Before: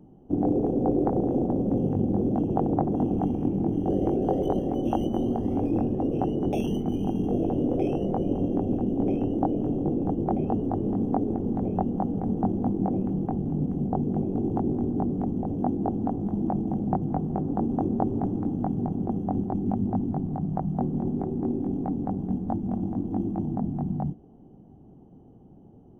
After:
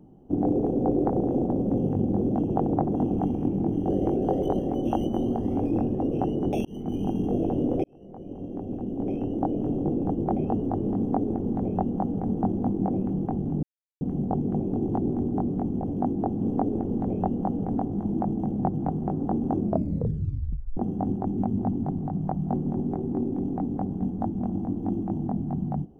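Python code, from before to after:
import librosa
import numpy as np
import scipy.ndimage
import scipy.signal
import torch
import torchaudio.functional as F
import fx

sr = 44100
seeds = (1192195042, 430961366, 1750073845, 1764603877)

y = fx.edit(x, sr, fx.fade_in_span(start_s=6.65, length_s=0.45, curve='qsin'),
    fx.fade_in_span(start_s=7.84, length_s=1.9),
    fx.duplicate(start_s=10.96, length_s=1.34, to_s=16.03),
    fx.insert_silence(at_s=13.63, length_s=0.38),
    fx.tape_stop(start_s=17.86, length_s=1.19), tone=tone)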